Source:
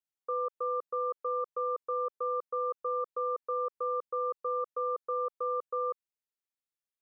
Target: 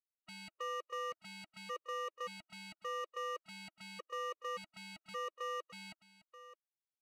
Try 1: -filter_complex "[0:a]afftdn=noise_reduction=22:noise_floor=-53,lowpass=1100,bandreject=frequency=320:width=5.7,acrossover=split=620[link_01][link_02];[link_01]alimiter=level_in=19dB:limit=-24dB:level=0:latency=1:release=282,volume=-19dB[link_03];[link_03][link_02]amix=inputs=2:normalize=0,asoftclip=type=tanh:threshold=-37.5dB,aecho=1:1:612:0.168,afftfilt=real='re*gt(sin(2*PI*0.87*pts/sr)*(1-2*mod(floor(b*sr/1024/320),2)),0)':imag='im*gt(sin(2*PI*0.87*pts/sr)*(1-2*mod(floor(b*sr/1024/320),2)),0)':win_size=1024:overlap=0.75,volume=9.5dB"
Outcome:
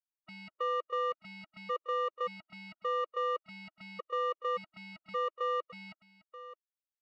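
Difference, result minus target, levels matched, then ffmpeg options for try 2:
soft clipping: distortion −7 dB
-filter_complex "[0:a]afftdn=noise_reduction=22:noise_floor=-53,lowpass=1100,bandreject=frequency=320:width=5.7,acrossover=split=620[link_01][link_02];[link_01]alimiter=level_in=19dB:limit=-24dB:level=0:latency=1:release=282,volume=-19dB[link_03];[link_03][link_02]amix=inputs=2:normalize=0,asoftclip=type=tanh:threshold=-47.5dB,aecho=1:1:612:0.168,afftfilt=real='re*gt(sin(2*PI*0.87*pts/sr)*(1-2*mod(floor(b*sr/1024/320),2)),0)':imag='im*gt(sin(2*PI*0.87*pts/sr)*(1-2*mod(floor(b*sr/1024/320),2)),0)':win_size=1024:overlap=0.75,volume=9.5dB"

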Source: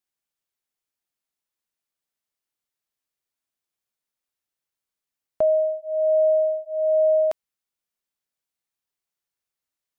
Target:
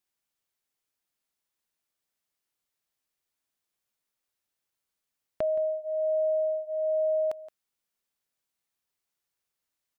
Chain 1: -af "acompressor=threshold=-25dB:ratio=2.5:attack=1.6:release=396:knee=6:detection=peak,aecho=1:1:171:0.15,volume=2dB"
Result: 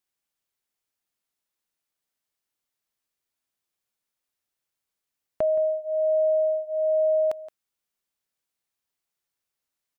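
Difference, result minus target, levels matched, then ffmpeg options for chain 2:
downward compressor: peak gain reduction −4.5 dB
-af "acompressor=threshold=-32.5dB:ratio=2.5:attack=1.6:release=396:knee=6:detection=peak,aecho=1:1:171:0.15,volume=2dB"

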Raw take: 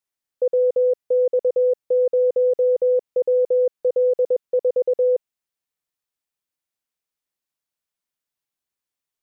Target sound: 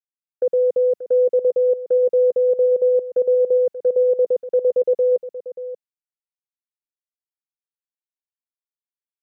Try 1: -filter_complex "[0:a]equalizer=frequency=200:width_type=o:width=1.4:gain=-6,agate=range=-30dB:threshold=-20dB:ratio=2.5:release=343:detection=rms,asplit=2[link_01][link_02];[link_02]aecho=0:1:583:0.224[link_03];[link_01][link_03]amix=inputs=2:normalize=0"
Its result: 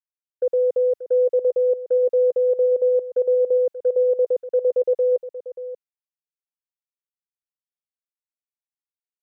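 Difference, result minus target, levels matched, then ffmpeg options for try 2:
250 Hz band −3.0 dB
-filter_complex "[0:a]equalizer=frequency=200:width_type=o:width=1.4:gain=3.5,agate=range=-30dB:threshold=-20dB:ratio=2.5:release=343:detection=rms,asplit=2[link_01][link_02];[link_02]aecho=0:1:583:0.224[link_03];[link_01][link_03]amix=inputs=2:normalize=0"

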